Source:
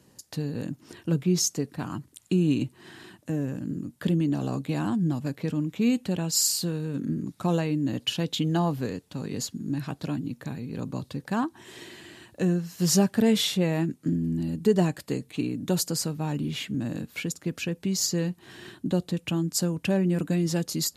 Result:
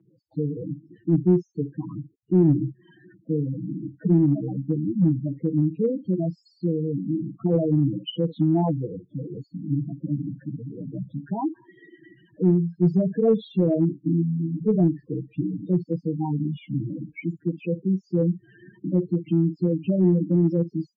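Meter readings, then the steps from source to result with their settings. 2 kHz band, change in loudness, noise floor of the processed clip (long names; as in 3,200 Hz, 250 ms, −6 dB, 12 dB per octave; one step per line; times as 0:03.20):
below −10 dB, +3.0 dB, −64 dBFS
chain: spectral magnitudes quantised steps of 30 dB
on a send: ambience of single reflections 22 ms −17.5 dB, 53 ms −13 dB
on the sum: spectral peaks only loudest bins 4
high-pass filter 54 Hz 12 dB per octave
comb filter 6.2 ms, depth 89%
in parallel at −8 dB: gain into a clipping stage and back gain 18 dB
on the sum: Bessel low-pass filter 2,000 Hz, order 6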